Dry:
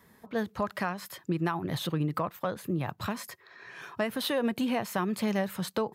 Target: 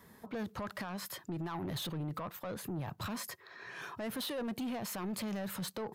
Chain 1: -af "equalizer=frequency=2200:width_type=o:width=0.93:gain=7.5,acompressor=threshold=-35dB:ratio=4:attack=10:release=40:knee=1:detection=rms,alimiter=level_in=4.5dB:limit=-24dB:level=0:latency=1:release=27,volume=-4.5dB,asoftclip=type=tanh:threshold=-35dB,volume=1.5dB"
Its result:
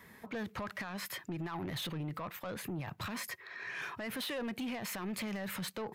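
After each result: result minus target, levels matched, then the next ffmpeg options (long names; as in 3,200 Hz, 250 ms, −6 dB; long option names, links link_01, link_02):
downward compressor: peak gain reduction +10.5 dB; 2,000 Hz band +5.0 dB
-af "equalizer=frequency=2200:width_type=o:width=0.93:gain=7.5,alimiter=level_in=4.5dB:limit=-24dB:level=0:latency=1:release=27,volume=-4.5dB,asoftclip=type=tanh:threshold=-35dB,volume=1.5dB"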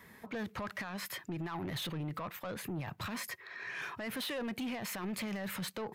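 2,000 Hz band +4.5 dB
-af "equalizer=frequency=2200:width_type=o:width=0.93:gain=-2.5,alimiter=level_in=4.5dB:limit=-24dB:level=0:latency=1:release=27,volume=-4.5dB,asoftclip=type=tanh:threshold=-35dB,volume=1.5dB"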